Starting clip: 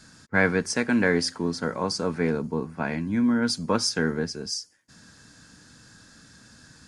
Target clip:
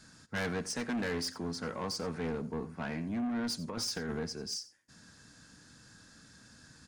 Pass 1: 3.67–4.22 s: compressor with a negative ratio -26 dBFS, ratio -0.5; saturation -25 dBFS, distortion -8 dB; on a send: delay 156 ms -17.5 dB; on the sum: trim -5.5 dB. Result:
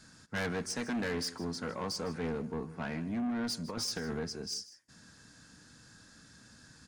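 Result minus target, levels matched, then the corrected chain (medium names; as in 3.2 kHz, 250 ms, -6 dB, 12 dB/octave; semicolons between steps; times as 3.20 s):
echo 67 ms late
3.67–4.22 s: compressor with a negative ratio -26 dBFS, ratio -0.5; saturation -25 dBFS, distortion -8 dB; on a send: delay 89 ms -17.5 dB; on the sum: trim -5.5 dB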